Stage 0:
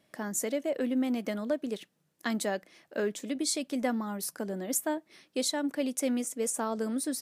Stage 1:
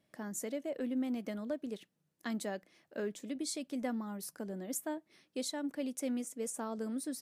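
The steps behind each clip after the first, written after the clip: bass shelf 270 Hz +6 dB; trim -9 dB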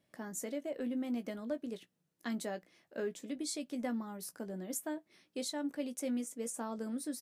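doubling 17 ms -9.5 dB; trim -1 dB

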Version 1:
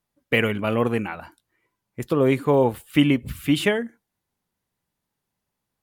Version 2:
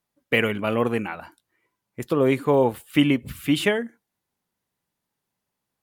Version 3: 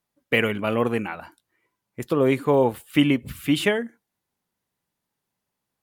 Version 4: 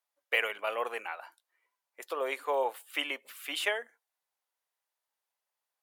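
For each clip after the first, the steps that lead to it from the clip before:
bass shelf 88 Hz -9.5 dB
no audible change
high-pass 560 Hz 24 dB/octave; trim -5.5 dB

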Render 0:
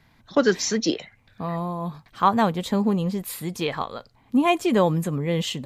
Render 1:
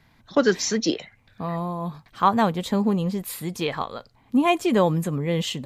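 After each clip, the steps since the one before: no audible change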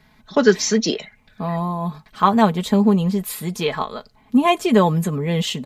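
comb 4.7 ms, depth 56%; trim +3 dB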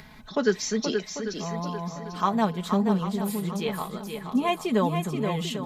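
upward compressor, threshold -26 dBFS; shuffle delay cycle 794 ms, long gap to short 1.5:1, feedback 31%, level -6.5 dB; trim -9 dB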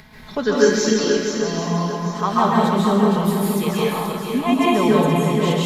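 plate-style reverb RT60 1.2 s, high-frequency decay 0.95×, pre-delay 120 ms, DRR -6.5 dB; trim +1.5 dB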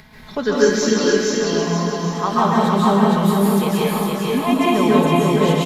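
delay 456 ms -3.5 dB

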